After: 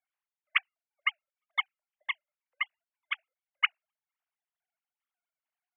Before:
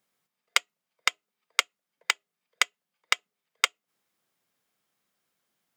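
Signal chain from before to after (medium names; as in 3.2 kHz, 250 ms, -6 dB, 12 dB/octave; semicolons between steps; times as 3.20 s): formants replaced by sine waves; tremolo saw down 2.2 Hz, depth 65%; gate -55 dBFS, range -7 dB; trim -1.5 dB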